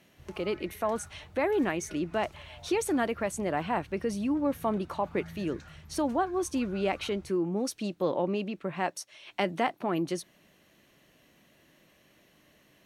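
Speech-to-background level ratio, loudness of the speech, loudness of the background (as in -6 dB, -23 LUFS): 19.5 dB, -31.5 LUFS, -51.0 LUFS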